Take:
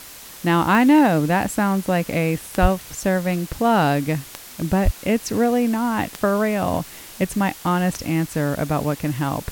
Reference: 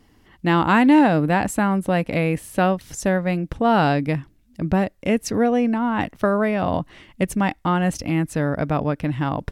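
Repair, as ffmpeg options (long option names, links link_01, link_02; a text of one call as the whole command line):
ffmpeg -i in.wav -filter_complex "[0:a]adeclick=threshold=4,asplit=3[link_01][link_02][link_03];[link_01]afade=type=out:start_time=2.61:duration=0.02[link_04];[link_02]highpass=frequency=140:width=0.5412,highpass=frequency=140:width=1.3066,afade=type=in:start_time=2.61:duration=0.02,afade=type=out:start_time=2.73:duration=0.02[link_05];[link_03]afade=type=in:start_time=2.73:duration=0.02[link_06];[link_04][link_05][link_06]amix=inputs=3:normalize=0,asplit=3[link_07][link_08][link_09];[link_07]afade=type=out:start_time=4.84:duration=0.02[link_10];[link_08]highpass=frequency=140:width=0.5412,highpass=frequency=140:width=1.3066,afade=type=in:start_time=4.84:duration=0.02,afade=type=out:start_time=4.96:duration=0.02[link_11];[link_09]afade=type=in:start_time=4.96:duration=0.02[link_12];[link_10][link_11][link_12]amix=inputs=3:normalize=0,afwtdn=0.011" out.wav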